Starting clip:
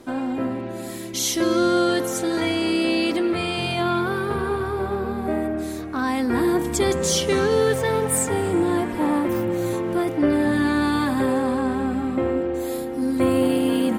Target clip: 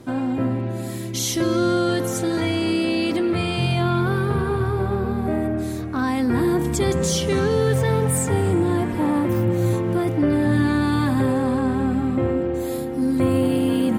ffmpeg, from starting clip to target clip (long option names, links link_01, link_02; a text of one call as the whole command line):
ffmpeg -i in.wav -filter_complex "[0:a]asplit=2[link_01][link_02];[link_02]alimiter=limit=-15.5dB:level=0:latency=1,volume=1dB[link_03];[link_01][link_03]amix=inputs=2:normalize=0,equalizer=frequency=120:width_type=o:width=1.2:gain=13,volume=-7dB" out.wav